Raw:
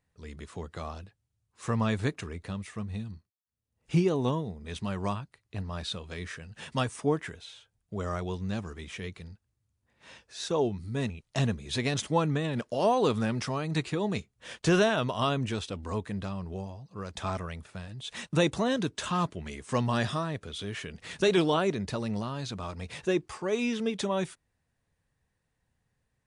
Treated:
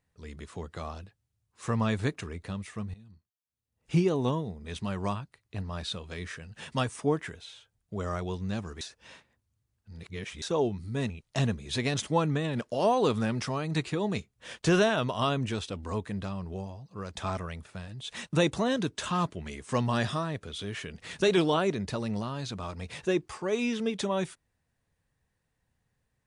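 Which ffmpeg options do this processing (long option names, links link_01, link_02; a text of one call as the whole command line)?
ffmpeg -i in.wav -filter_complex "[0:a]asplit=4[link_01][link_02][link_03][link_04];[link_01]atrim=end=2.94,asetpts=PTS-STARTPTS,afade=type=out:start_time=2.936:duration=0.004:curve=hsin:silence=0.0944061[link_05];[link_02]atrim=start=2.94:end=8.812,asetpts=PTS-STARTPTS,afade=type=in:duration=1.02:silence=0.0944061[link_06];[link_03]atrim=start=8.808:end=10.422,asetpts=PTS-STARTPTS,areverse[link_07];[link_04]atrim=start=10.418[link_08];[link_05][link_06]concat=n=2:v=0:a=1[link_09];[link_09][link_07]acrossfade=duration=0.004:curve1=hsin:curve2=hsin[link_10];[link_10][link_08]acrossfade=duration=0.004:curve1=hsin:curve2=hsin" out.wav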